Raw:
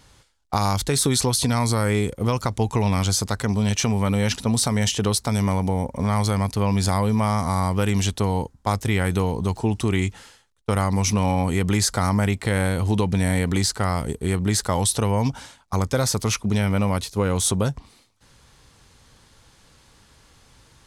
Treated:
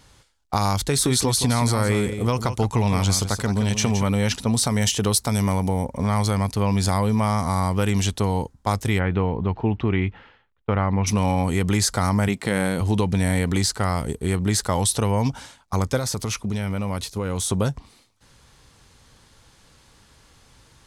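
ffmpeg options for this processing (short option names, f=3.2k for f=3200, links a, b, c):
-filter_complex "[0:a]asettb=1/sr,asplit=3[a][b][c];[a]atrim=end=0.824[d];[b]atrim=start=0.82:end=4.04,asetpts=PTS-STARTPTS,afade=t=in:d=0.004:c=qsin,afade=t=out:st=3.216:d=0.004:c=qsin,aecho=1:1:169:0.335,atrim=end_sample=142002[e];[c]atrim=start=4.036[f];[d][e]acrossfade=d=0.004:c1=hsin:c2=qsin[g];[g][f]acrossfade=d=0.004:c1=qsin:c2=hsin,asettb=1/sr,asplit=3[h][i][j];[h]atrim=end=4.704[k];[i]atrim=start=4.7:end=5.85,asetpts=PTS-STARTPTS,afade=t=in:d=0.004:c=qsin,afade=t=out:st=1.146:d=0.004:c=qsin,highshelf=f=10k:g=9[l];[j]atrim=start=5.846[m];[k][l]acrossfade=d=0.004:c1=hsin:c2=qsin[n];[n][m]acrossfade=d=0.004:c1=qsin:c2=hsin,asplit=3[o][p][q];[o]afade=t=out:st=8.98:d=0.02[r];[p]lowpass=f=2.8k:w=0.5412,lowpass=f=2.8k:w=1.3066,afade=t=in:st=8.98:d=0.02,afade=t=out:st=11.06:d=0.02[s];[q]afade=t=in:st=11.06:d=0.02[t];[r][s][t]amix=inputs=3:normalize=0,asettb=1/sr,asplit=3[u][v][w];[u]atrim=end=12.284[x];[v]atrim=start=12.28:end=12.81,asetpts=PTS-STARTPTS,afade=t=in:d=0.004:c=qsin,afade=t=out:st=0.526:d=0.004:c=qsin,lowshelf=f=120:t=q:w=1.5:g=-9.5[y];[w]atrim=start=12.806[z];[x][y]acrossfade=d=0.004:c1=hsin:c2=qsin[aa];[aa][z]acrossfade=d=0.004:c1=qsin:c2=hsin,asettb=1/sr,asplit=3[ab][ac][ad];[ab]atrim=end=15.974[ae];[ac]atrim=start=15.97:end=17.51,asetpts=PTS-STARTPTS,afade=t=in:d=0.004:c=qsin,afade=t=out:st=1.536:d=0.004:c=qsin,acompressor=threshold=-22dB:ratio=4:attack=3.2:release=140:knee=1:detection=peak[af];[ad]atrim=start=17.506[ag];[ae][af]acrossfade=d=0.004:c1=hsin:c2=qsin[ah];[ah][ag]acrossfade=d=0.004:c1=qsin:c2=hsin"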